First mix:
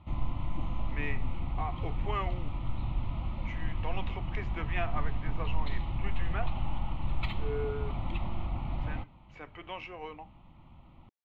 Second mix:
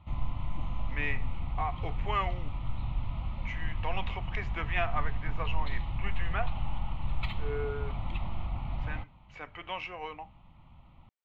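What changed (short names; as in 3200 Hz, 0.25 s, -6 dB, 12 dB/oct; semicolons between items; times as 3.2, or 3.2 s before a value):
speech +5.0 dB; master: add bell 340 Hz -7.5 dB 1.2 oct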